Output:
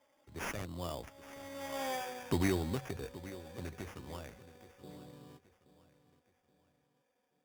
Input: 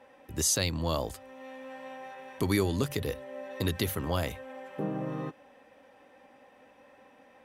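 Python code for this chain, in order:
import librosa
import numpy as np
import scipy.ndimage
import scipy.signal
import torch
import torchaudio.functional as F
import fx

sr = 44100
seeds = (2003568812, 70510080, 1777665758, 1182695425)

y = fx.doppler_pass(x, sr, speed_mps=20, closest_m=3.0, pass_at_s=1.9)
y = fx.echo_feedback(y, sr, ms=825, feedback_pct=39, wet_db=-16.0)
y = fx.sample_hold(y, sr, seeds[0], rate_hz=4100.0, jitter_pct=0)
y = y * librosa.db_to_amplitude(7.0)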